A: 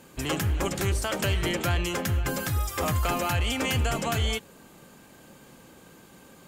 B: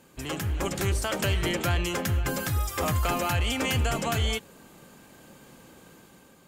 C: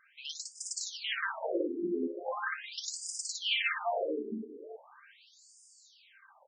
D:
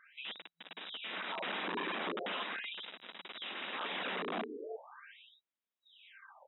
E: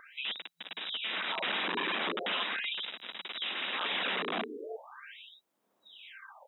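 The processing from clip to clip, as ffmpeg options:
-af "dynaudnorm=f=160:g=7:m=5dB,volume=-5dB"
-af "aecho=1:1:58|258|382:0.668|0.211|0.266,afftfilt=real='re*between(b*sr/1024,300*pow(6800/300,0.5+0.5*sin(2*PI*0.4*pts/sr))/1.41,300*pow(6800/300,0.5+0.5*sin(2*PI*0.4*pts/sr))*1.41)':imag='im*between(b*sr/1024,300*pow(6800/300,0.5+0.5*sin(2*PI*0.4*pts/sr))/1.41,300*pow(6800/300,0.5+0.5*sin(2*PI*0.4*pts/sr))*1.41)':win_size=1024:overlap=0.75,volume=1.5dB"
-af "aeval=exprs='(mod(56.2*val(0)+1,2)-1)/56.2':c=same,afftfilt=real='re*between(b*sr/4096,170,3900)':imag='im*between(b*sr/4096,170,3900)':win_size=4096:overlap=0.75,volume=3dB"
-filter_complex "[0:a]highshelf=f=2.3k:g=9.5,acrossover=split=150|1000[a][b][c];[b]acompressor=mode=upward:threshold=-55dB:ratio=2.5[d];[a][d][c]amix=inputs=3:normalize=0,volume=2dB"

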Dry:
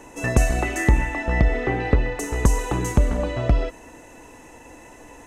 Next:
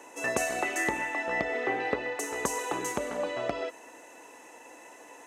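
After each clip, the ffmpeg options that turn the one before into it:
-af "highpass=420,volume=-3dB"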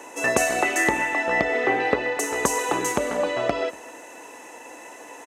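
-af "aecho=1:1:238:0.0708,volume=8dB"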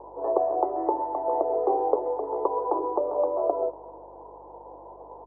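-af "asuperpass=centerf=580:order=12:qfactor=0.82,aeval=exprs='val(0)+0.00112*(sin(2*PI*50*n/s)+sin(2*PI*2*50*n/s)/2+sin(2*PI*3*50*n/s)/3+sin(2*PI*4*50*n/s)/4+sin(2*PI*5*50*n/s)/5)':c=same"

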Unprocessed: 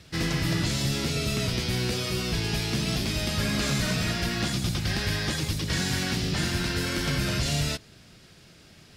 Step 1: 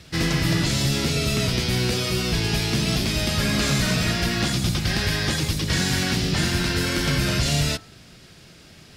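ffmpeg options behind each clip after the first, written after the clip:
-af "bandreject=f=101.3:t=h:w=4,bandreject=f=202.6:t=h:w=4,bandreject=f=303.9:t=h:w=4,bandreject=f=405.2:t=h:w=4,bandreject=f=506.5:t=h:w=4,bandreject=f=607.8:t=h:w=4,bandreject=f=709.1:t=h:w=4,bandreject=f=810.4:t=h:w=4,bandreject=f=911.7:t=h:w=4,bandreject=f=1.013k:t=h:w=4,bandreject=f=1.1143k:t=h:w=4,bandreject=f=1.2156k:t=h:w=4,bandreject=f=1.3169k:t=h:w=4,bandreject=f=1.4182k:t=h:w=4,bandreject=f=1.5195k:t=h:w=4,bandreject=f=1.6208k:t=h:w=4,bandreject=f=1.7221k:t=h:w=4,bandreject=f=1.8234k:t=h:w=4,volume=5dB"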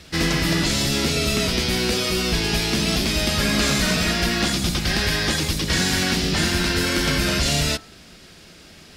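-af "equalizer=f=120:w=3.5:g=-15,volume=3dB"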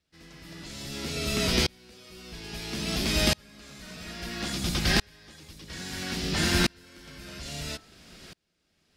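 -af "aeval=exprs='val(0)*pow(10,-35*if(lt(mod(-0.6*n/s,1),2*abs(-0.6)/1000),1-mod(-0.6*n/s,1)/(2*abs(-0.6)/1000),(mod(-0.6*n/s,1)-2*abs(-0.6)/1000)/(1-2*abs(-0.6)/1000))/20)':c=same"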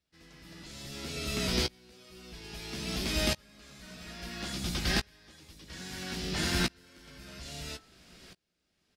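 -filter_complex "[0:a]asplit=2[a][b];[b]adelay=16,volume=-10.5dB[c];[a][c]amix=inputs=2:normalize=0,volume=-5.5dB"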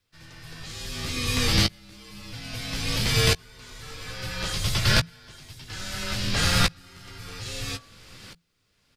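-af "afreqshift=-170,volume=8.5dB"

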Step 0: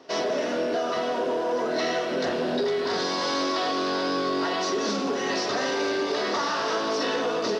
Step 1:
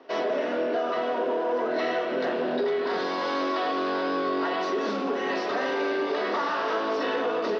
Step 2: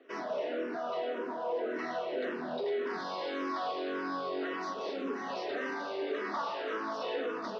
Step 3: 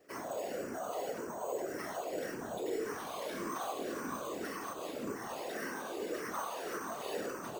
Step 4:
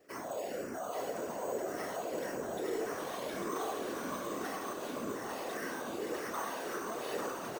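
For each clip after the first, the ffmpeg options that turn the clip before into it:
-filter_complex "[0:a]acrossover=split=190 3400:gain=0.126 1 0.1[a][b][c];[a][b][c]amix=inputs=3:normalize=0"
-filter_complex "[0:a]asplit=2[a][b];[b]afreqshift=-1.8[c];[a][c]amix=inputs=2:normalize=1,volume=-5.5dB"
-af "acrusher=samples=6:mix=1:aa=0.000001,afftfilt=real='hypot(re,im)*cos(2*PI*random(0))':imag='hypot(re,im)*sin(2*PI*random(1))':win_size=512:overlap=0.75,volume=2dB"
-af "aecho=1:1:847:0.562"

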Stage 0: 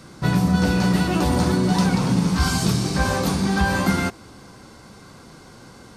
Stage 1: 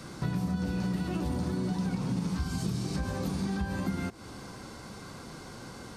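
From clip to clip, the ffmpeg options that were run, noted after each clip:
-filter_complex "[0:a]acrossover=split=400[a][b];[b]alimiter=limit=-24dB:level=0:latency=1:release=133[c];[a][c]amix=inputs=2:normalize=0,acompressor=threshold=-32dB:ratio=3"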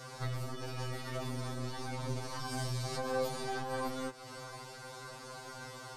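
-af "aeval=exprs='0.106*(cos(1*acos(clip(val(0)/0.106,-1,1)))-cos(1*PI/2))+0.0335*(cos(2*acos(clip(val(0)/0.106,-1,1)))-cos(2*PI/2))':c=same,lowshelf=f=410:t=q:w=1.5:g=-7,afftfilt=real='re*2.45*eq(mod(b,6),0)':imag='im*2.45*eq(mod(b,6),0)':win_size=2048:overlap=0.75,volume=2dB"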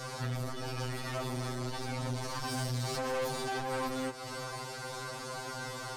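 -af "aeval=exprs='(tanh(89.1*val(0)+0.35)-tanh(0.35))/89.1':c=same,volume=8.5dB"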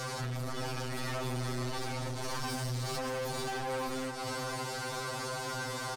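-af "acompressor=threshold=-37dB:ratio=6,asoftclip=type=tanh:threshold=-38.5dB,aecho=1:1:543:0.316,volume=6.5dB"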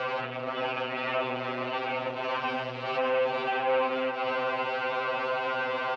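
-af "highpass=350,equalizer=f=360:t=q:w=4:g=-5,equalizer=f=550:t=q:w=4:g=5,equalizer=f=1.8k:t=q:w=4:g=-4,equalizer=f=2.7k:t=q:w=4:g=9,lowpass=f=2.8k:w=0.5412,lowpass=f=2.8k:w=1.3066,volume=8.5dB"

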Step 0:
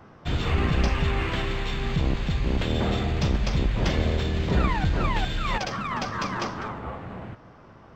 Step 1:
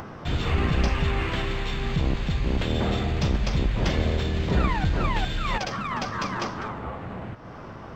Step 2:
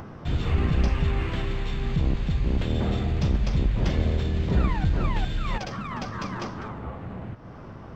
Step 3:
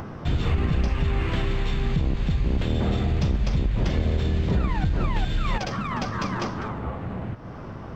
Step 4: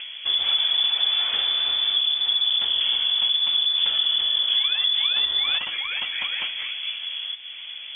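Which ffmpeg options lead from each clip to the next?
-af "acompressor=mode=upward:threshold=-29dB:ratio=2.5"
-af "lowshelf=f=370:g=7.5,volume=-6dB"
-af "acompressor=threshold=-23dB:ratio=6,volume=4.5dB"
-af "lowpass=f=3k:t=q:w=0.5098,lowpass=f=3k:t=q:w=0.6013,lowpass=f=3k:t=q:w=0.9,lowpass=f=3k:t=q:w=2.563,afreqshift=-3500"

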